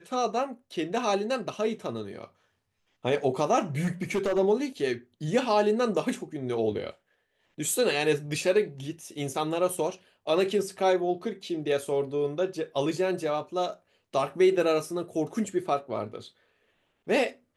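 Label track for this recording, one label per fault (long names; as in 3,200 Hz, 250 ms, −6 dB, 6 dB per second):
3.840000	4.390000	clipping −22.5 dBFS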